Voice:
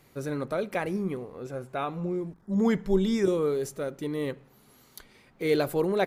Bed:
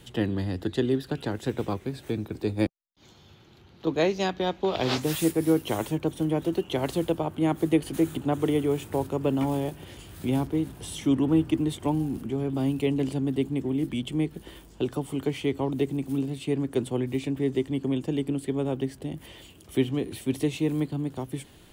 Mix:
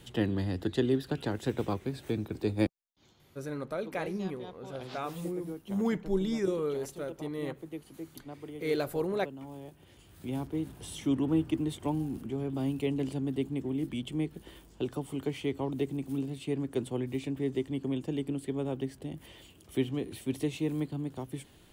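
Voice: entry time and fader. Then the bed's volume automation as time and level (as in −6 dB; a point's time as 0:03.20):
3.20 s, −5.5 dB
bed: 0:02.69 −2.5 dB
0:03.63 −19 dB
0:09.41 −19 dB
0:10.71 −5.5 dB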